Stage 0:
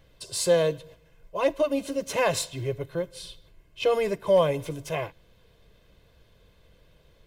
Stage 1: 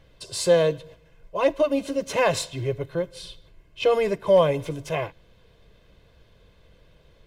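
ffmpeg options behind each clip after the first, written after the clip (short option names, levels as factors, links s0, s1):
-af "highshelf=f=9000:g=-10,volume=1.41"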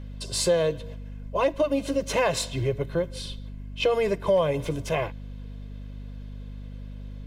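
-af "aeval=exprs='val(0)+0.0112*(sin(2*PI*50*n/s)+sin(2*PI*2*50*n/s)/2+sin(2*PI*3*50*n/s)/3+sin(2*PI*4*50*n/s)/4+sin(2*PI*5*50*n/s)/5)':c=same,acompressor=threshold=0.0631:ratio=2.5,volume=1.33"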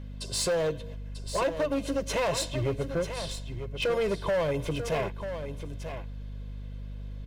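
-filter_complex "[0:a]asoftclip=type=hard:threshold=0.0841,asplit=2[s0][s1];[s1]aecho=0:1:942:0.335[s2];[s0][s2]amix=inputs=2:normalize=0,volume=0.794"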